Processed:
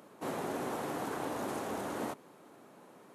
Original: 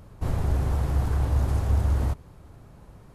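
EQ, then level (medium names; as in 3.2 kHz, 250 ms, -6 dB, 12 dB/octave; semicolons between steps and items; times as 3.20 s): high-pass 240 Hz 24 dB/octave; peaking EQ 4.9 kHz -4 dB 0.38 oct; 0.0 dB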